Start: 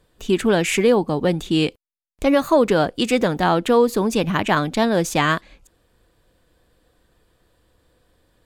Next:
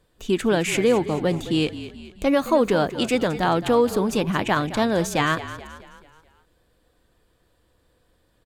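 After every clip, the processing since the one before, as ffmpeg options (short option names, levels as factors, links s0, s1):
-filter_complex "[0:a]asplit=6[s0][s1][s2][s3][s4][s5];[s1]adelay=215,afreqshift=-42,volume=0.211[s6];[s2]adelay=430,afreqshift=-84,volume=0.104[s7];[s3]adelay=645,afreqshift=-126,volume=0.0507[s8];[s4]adelay=860,afreqshift=-168,volume=0.0248[s9];[s5]adelay=1075,afreqshift=-210,volume=0.0122[s10];[s0][s6][s7][s8][s9][s10]amix=inputs=6:normalize=0,volume=0.708"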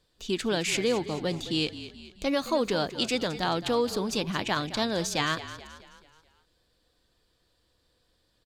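-af "equalizer=f=4600:w=1.1:g=12.5,volume=0.398"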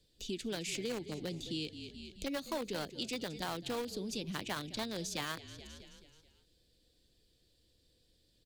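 -filter_complex "[0:a]acrossover=split=260|580|2100[s0][s1][s2][s3];[s2]acrusher=bits=4:mix=0:aa=0.000001[s4];[s0][s1][s4][s3]amix=inputs=4:normalize=0,acompressor=threshold=0.00631:ratio=2"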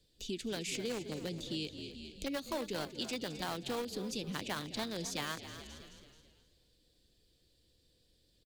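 -filter_complex "[0:a]asplit=4[s0][s1][s2][s3];[s1]adelay=264,afreqshift=37,volume=0.224[s4];[s2]adelay=528,afreqshift=74,volume=0.0741[s5];[s3]adelay=792,afreqshift=111,volume=0.0243[s6];[s0][s4][s5][s6]amix=inputs=4:normalize=0"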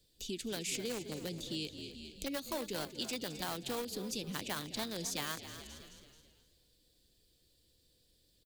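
-af "highshelf=f=8100:g=11,volume=0.841"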